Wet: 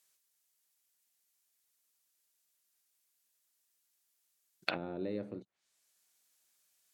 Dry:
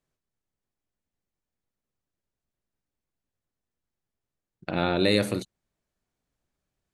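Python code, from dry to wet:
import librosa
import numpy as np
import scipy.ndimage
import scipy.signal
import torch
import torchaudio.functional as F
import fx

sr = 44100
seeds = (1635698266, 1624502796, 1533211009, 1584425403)

y = fx.env_lowpass_down(x, sr, base_hz=310.0, full_db=-24.5)
y = np.diff(y, prepend=0.0)
y = y * librosa.db_to_amplitude(16.5)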